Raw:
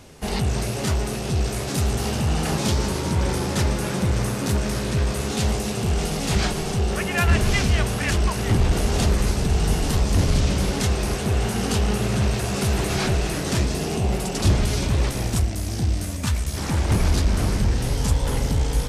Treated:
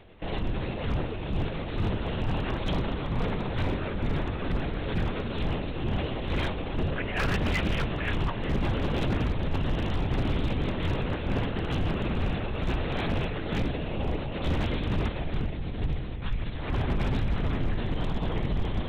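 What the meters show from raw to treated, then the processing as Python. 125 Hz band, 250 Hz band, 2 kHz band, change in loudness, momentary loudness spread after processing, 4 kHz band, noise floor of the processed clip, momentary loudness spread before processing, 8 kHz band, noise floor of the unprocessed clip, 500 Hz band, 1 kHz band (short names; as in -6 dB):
-8.0 dB, -5.5 dB, -6.0 dB, -7.5 dB, 4 LU, -9.0 dB, -33 dBFS, 4 LU, under -25 dB, -28 dBFS, -6.0 dB, -6.0 dB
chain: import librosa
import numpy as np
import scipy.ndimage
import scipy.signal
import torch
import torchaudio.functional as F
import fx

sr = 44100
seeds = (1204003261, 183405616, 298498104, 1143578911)

y = fx.lpc_vocoder(x, sr, seeds[0], excitation='whisper', order=10)
y = 10.0 ** (-14.5 / 20.0) * (np.abs((y / 10.0 ** (-14.5 / 20.0) + 3.0) % 4.0 - 2.0) - 1.0)
y = y * 10.0 ** (-5.5 / 20.0)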